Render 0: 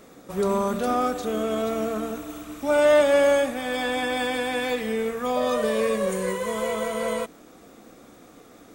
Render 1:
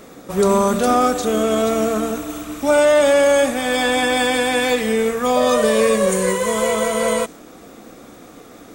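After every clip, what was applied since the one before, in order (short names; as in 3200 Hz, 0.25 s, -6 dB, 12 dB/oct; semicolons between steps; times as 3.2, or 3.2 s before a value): dynamic EQ 7500 Hz, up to +6 dB, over -51 dBFS, Q 0.96; maximiser +12.5 dB; gain -4.5 dB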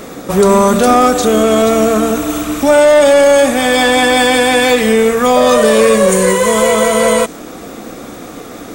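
in parallel at 0 dB: compressor, threshold -24 dBFS, peak gain reduction 12.5 dB; on the sum: soft clip -6.5 dBFS, distortion -20 dB; gain +6 dB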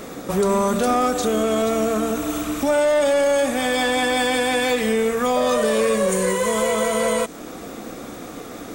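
compressor 1.5:1, threshold -19 dBFS, peak gain reduction 5 dB; gain -5.5 dB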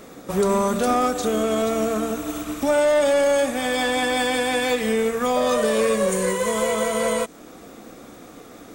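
upward expander 1.5:1, over -32 dBFS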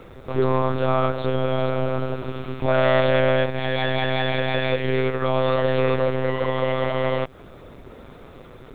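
monotone LPC vocoder at 8 kHz 130 Hz; bit-crush 11-bit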